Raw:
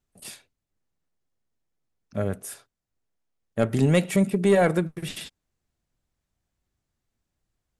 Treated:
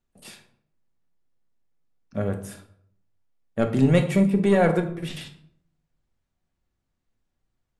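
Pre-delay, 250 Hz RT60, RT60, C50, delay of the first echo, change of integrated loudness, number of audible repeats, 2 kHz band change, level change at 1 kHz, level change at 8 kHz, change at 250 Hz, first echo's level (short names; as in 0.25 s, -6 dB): 3 ms, 0.75 s, 0.65 s, 11.0 dB, none, +1.5 dB, none, 0.0 dB, +1.0 dB, -6.0 dB, +2.5 dB, none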